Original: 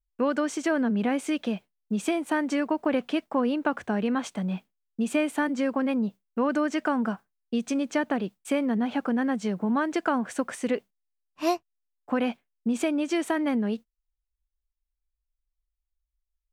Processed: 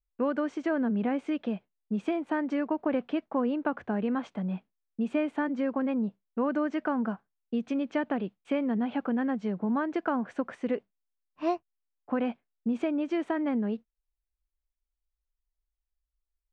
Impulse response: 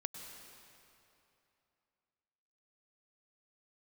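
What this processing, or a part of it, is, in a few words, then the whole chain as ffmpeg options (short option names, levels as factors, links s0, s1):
phone in a pocket: -filter_complex "[0:a]asettb=1/sr,asplit=3[s0][s1][s2];[s0]atrim=end=7.664[s3];[s1]atrim=start=7.66:end=9.31,asetpts=PTS-STARTPTS,afade=t=in:d=0.004:c=qsin,afade=t=out:st=1.646:d=0.004:c=qsin,equalizer=f=3000:w=1.5:g=4[s4];[s2]atrim=start=9.306[s5];[s3][s4]acrossfade=d=0.004:c1=hsin:c2=qsin[s6];[s6][s5]acrossfade=d=0.004:c1=qsin:c2=hsin,lowpass=3800,highshelf=f=2300:g=-9.5,volume=0.75"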